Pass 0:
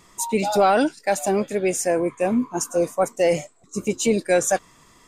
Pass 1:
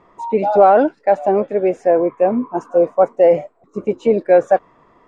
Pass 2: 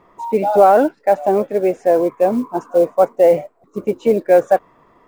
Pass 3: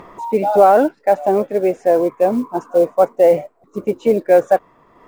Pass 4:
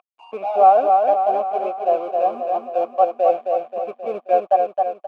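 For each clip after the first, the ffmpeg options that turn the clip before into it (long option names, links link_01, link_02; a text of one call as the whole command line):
ffmpeg -i in.wav -af "lowpass=2000,equalizer=frequency=600:width_type=o:width=2.3:gain=12.5,volume=-4dB" out.wav
ffmpeg -i in.wav -af "acrusher=bits=8:mode=log:mix=0:aa=0.000001" out.wav
ffmpeg -i in.wav -af "acompressor=mode=upward:threshold=-30dB:ratio=2.5" out.wav
ffmpeg -i in.wav -filter_complex "[0:a]aeval=exprs='sgn(val(0))*max(abs(val(0))-0.0376,0)':channel_layout=same,asplit=3[link_01][link_02][link_03];[link_01]bandpass=frequency=730:width_type=q:width=8,volume=0dB[link_04];[link_02]bandpass=frequency=1090:width_type=q:width=8,volume=-6dB[link_05];[link_03]bandpass=frequency=2440:width_type=q:width=8,volume=-9dB[link_06];[link_04][link_05][link_06]amix=inputs=3:normalize=0,aecho=1:1:266|532|798|1064|1330|1596|1862:0.631|0.341|0.184|0.0994|0.0537|0.029|0.0156,volume=4dB" out.wav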